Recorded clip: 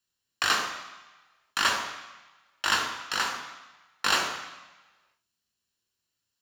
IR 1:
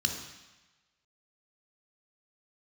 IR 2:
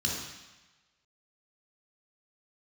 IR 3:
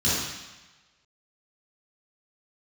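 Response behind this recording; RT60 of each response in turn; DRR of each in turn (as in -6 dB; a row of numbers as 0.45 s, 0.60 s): 1; 1.1 s, 1.1 s, 1.1 s; 3.5 dB, -2.5 dB, -11.0 dB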